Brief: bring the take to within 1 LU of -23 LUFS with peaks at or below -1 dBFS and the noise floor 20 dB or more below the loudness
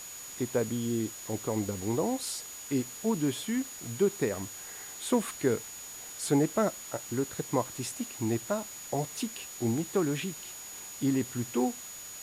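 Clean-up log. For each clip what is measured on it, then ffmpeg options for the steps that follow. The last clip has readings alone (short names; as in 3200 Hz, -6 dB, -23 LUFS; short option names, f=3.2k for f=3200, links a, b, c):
steady tone 6800 Hz; tone level -43 dBFS; noise floor -44 dBFS; noise floor target -52 dBFS; loudness -32.0 LUFS; peak -13.0 dBFS; loudness target -23.0 LUFS
-> -af "bandreject=f=6.8k:w=30"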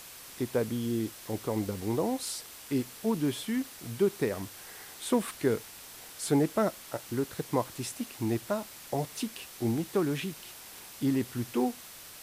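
steady tone none; noise floor -48 dBFS; noise floor target -52 dBFS
-> -af "afftdn=nr=6:nf=-48"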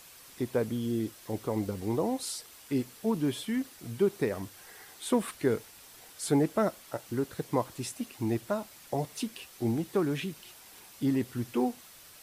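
noise floor -53 dBFS; loudness -32.0 LUFS; peak -13.0 dBFS; loudness target -23.0 LUFS
-> -af "volume=9dB"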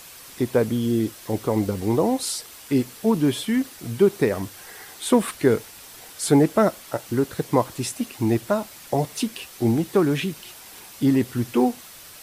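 loudness -23.0 LUFS; peak -4.0 dBFS; noise floor -44 dBFS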